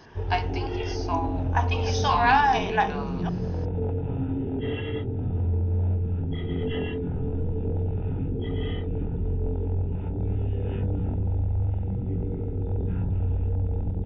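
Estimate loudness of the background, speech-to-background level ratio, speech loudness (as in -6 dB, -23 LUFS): -29.0 LUFS, 3.5 dB, -25.5 LUFS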